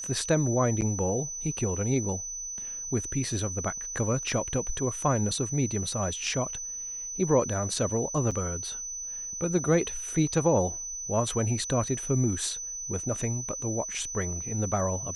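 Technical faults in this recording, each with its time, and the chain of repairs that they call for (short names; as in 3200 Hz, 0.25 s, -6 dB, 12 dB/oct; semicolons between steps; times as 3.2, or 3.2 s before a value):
tone 6000 Hz -34 dBFS
0.81–0.82 gap 9.3 ms
8.31–8.32 gap 5.9 ms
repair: notch 6000 Hz, Q 30; interpolate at 0.81, 9.3 ms; interpolate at 8.31, 5.9 ms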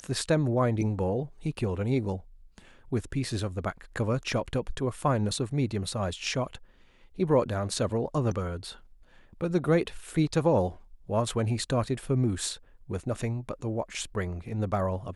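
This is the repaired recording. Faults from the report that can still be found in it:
none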